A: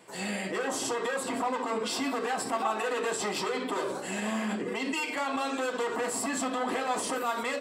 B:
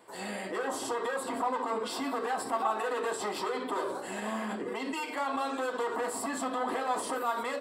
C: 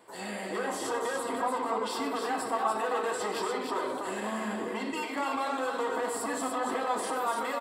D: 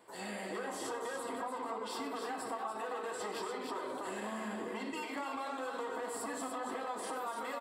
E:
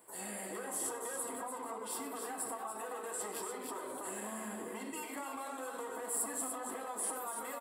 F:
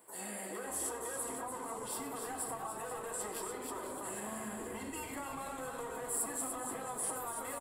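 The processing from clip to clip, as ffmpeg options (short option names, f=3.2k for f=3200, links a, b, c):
-af "equalizer=f=160:t=o:w=0.67:g=-10,equalizer=f=1k:t=o:w=0.67:g=3,equalizer=f=2.5k:t=o:w=0.67:g=-6,equalizer=f=6.3k:t=o:w=0.67:g=-8,volume=-1.5dB"
-af "aecho=1:1:97|292:0.251|0.562"
-af "acompressor=threshold=-32dB:ratio=6,volume=-4dB"
-af "highshelf=f=6.9k:t=q:w=1.5:g=14,volume=-3dB"
-filter_complex "[0:a]asplit=8[a][b][c][d][e][f][g][h];[b]adelay=485,afreqshift=-130,volume=-12dB[i];[c]adelay=970,afreqshift=-260,volume=-16.3dB[j];[d]adelay=1455,afreqshift=-390,volume=-20.6dB[k];[e]adelay=1940,afreqshift=-520,volume=-24.9dB[l];[f]adelay=2425,afreqshift=-650,volume=-29.2dB[m];[g]adelay=2910,afreqshift=-780,volume=-33.5dB[n];[h]adelay=3395,afreqshift=-910,volume=-37.8dB[o];[a][i][j][k][l][m][n][o]amix=inputs=8:normalize=0"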